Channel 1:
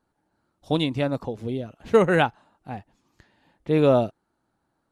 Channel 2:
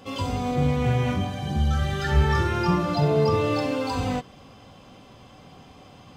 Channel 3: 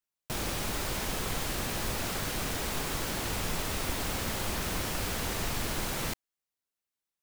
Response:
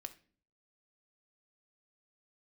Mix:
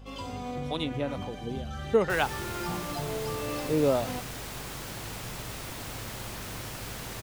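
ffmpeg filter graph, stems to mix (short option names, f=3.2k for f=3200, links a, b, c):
-filter_complex "[0:a]acrossover=split=690[a][b];[a]aeval=exprs='val(0)*(1-0.7/2+0.7/2*cos(2*PI*2.1*n/s))':c=same[c];[b]aeval=exprs='val(0)*(1-0.7/2-0.7/2*cos(2*PI*2.1*n/s))':c=same[d];[c][d]amix=inputs=2:normalize=0,volume=-3dB,asplit=2[e][f];[1:a]alimiter=limit=-15.5dB:level=0:latency=1:release=281,volume=-8dB[g];[2:a]equalizer=f=120:t=o:w=0.4:g=13.5,adelay=1800,volume=-5.5dB[h];[f]apad=whole_len=271964[i];[g][i]sidechaincompress=threshold=-30dB:ratio=3:attack=8.6:release=138[j];[e][j][h]amix=inputs=3:normalize=0,lowshelf=f=130:g=-9,aeval=exprs='val(0)+0.00501*(sin(2*PI*50*n/s)+sin(2*PI*2*50*n/s)/2+sin(2*PI*3*50*n/s)/3+sin(2*PI*4*50*n/s)/4+sin(2*PI*5*50*n/s)/5)':c=same"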